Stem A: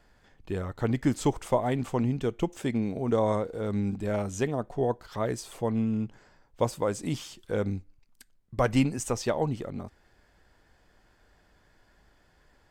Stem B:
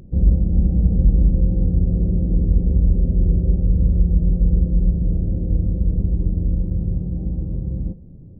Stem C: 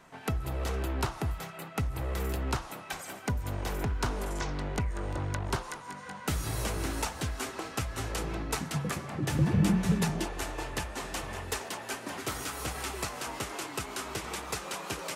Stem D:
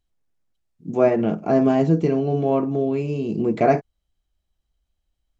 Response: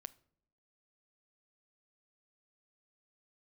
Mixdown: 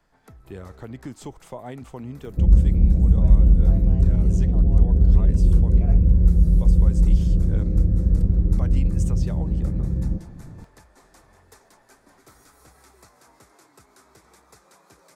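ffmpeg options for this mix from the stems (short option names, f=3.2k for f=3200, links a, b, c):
-filter_complex "[0:a]volume=-6dB[a];[1:a]adelay=2250,volume=1dB[b];[2:a]equalizer=f=2.9k:w=3.2:g=-14,volume=-16.5dB[c];[3:a]adelay=2200,volume=-17.5dB[d];[a][c][d]amix=inputs=3:normalize=0,alimiter=level_in=0.5dB:limit=-24dB:level=0:latency=1:release=214,volume=-0.5dB,volume=0dB[e];[b][e]amix=inputs=2:normalize=0,acrossover=split=140|3000[f][g][h];[g]acompressor=threshold=-27dB:ratio=6[i];[f][i][h]amix=inputs=3:normalize=0"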